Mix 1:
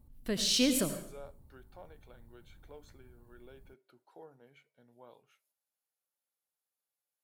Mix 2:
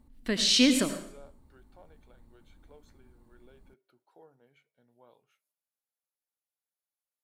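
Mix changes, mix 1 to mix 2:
speech -4.0 dB; background: add ten-band graphic EQ 125 Hz -8 dB, 250 Hz +8 dB, 1 kHz +4 dB, 2 kHz +8 dB, 4 kHz +5 dB, 8 kHz +6 dB, 16 kHz -11 dB

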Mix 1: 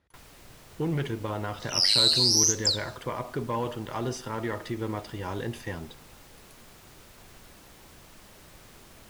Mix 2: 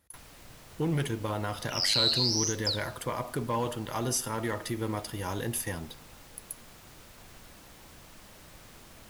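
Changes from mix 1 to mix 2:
speech: remove low-pass 3.8 kHz 12 dB/octave; second sound: add distance through air 140 m; master: add peaking EQ 390 Hz -4.5 dB 0.21 oct

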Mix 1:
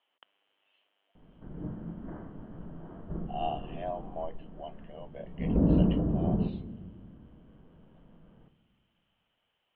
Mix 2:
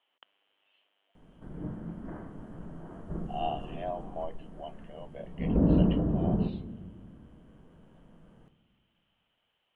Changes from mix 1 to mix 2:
speech: add distance through air 350 m; master: remove distance through air 440 m

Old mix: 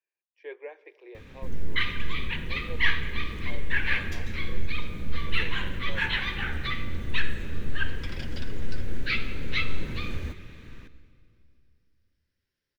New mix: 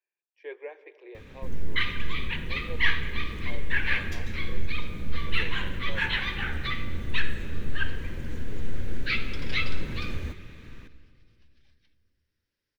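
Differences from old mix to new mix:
speech: send +6.5 dB; second sound: entry +1.30 s

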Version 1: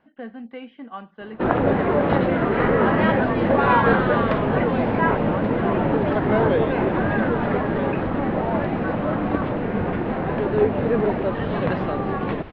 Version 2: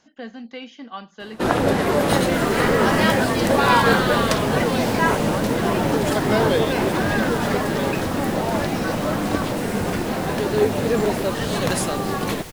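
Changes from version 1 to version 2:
second sound: entry -0.95 s; master: remove Bessel low-pass 1.8 kHz, order 6

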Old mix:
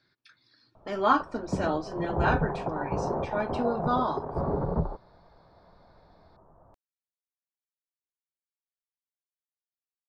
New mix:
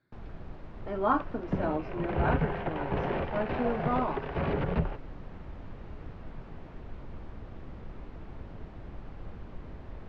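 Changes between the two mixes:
first sound: unmuted; second sound: remove steep low-pass 1.1 kHz; master: add tape spacing loss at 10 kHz 42 dB

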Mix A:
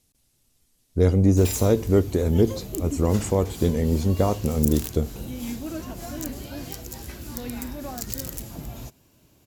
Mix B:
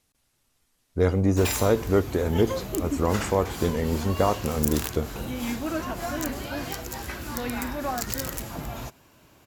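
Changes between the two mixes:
speech -5.5 dB; master: add peaking EQ 1.3 kHz +11.5 dB 2.4 oct

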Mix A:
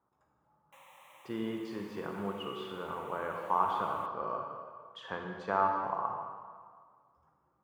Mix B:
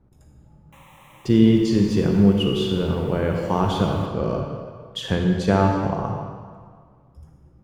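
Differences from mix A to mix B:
speech: remove band-pass filter 1.1 kHz, Q 3.1; background +7.0 dB

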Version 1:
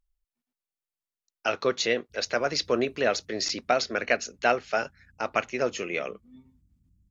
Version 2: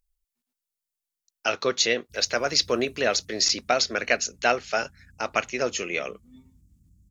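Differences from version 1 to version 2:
background +6.5 dB; master: add treble shelf 3.7 kHz +11 dB

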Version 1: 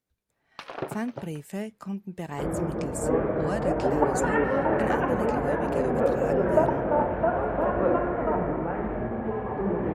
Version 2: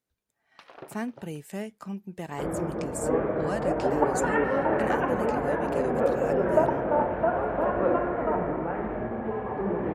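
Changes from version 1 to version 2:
first sound -10.5 dB; master: add bass shelf 170 Hz -5.5 dB

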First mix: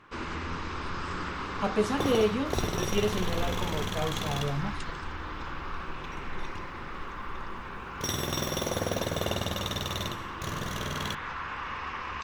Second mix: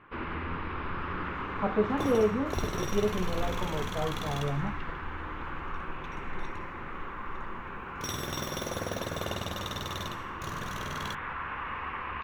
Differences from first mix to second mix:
speech: add low-pass 1.4 kHz; first sound: add low-pass 2.8 kHz 24 dB/octave; second sound -4.5 dB

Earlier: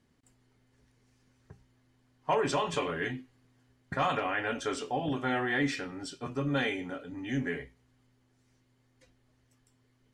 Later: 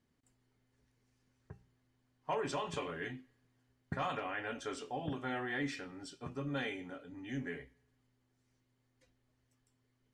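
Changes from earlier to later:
speech -8.5 dB; reverb: on, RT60 1.0 s

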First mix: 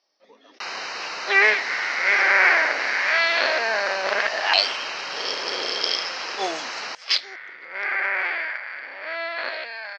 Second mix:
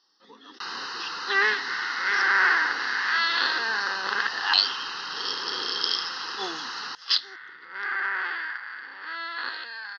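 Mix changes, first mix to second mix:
speech +8.0 dB; master: add static phaser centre 2.3 kHz, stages 6

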